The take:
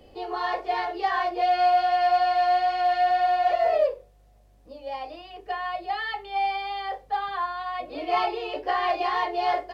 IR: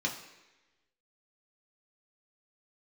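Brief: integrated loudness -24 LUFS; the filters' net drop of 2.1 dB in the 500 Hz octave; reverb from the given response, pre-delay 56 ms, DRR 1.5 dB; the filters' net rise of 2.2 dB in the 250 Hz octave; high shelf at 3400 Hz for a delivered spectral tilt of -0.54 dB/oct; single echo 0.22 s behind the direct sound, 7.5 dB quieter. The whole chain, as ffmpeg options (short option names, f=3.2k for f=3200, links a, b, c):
-filter_complex "[0:a]equalizer=f=250:t=o:g=7.5,equalizer=f=500:t=o:g=-4.5,highshelf=f=3.4k:g=-8.5,aecho=1:1:220:0.422,asplit=2[a][b];[1:a]atrim=start_sample=2205,adelay=56[c];[b][c]afir=irnorm=-1:irlink=0,volume=-7dB[d];[a][d]amix=inputs=2:normalize=0,volume=-0.5dB"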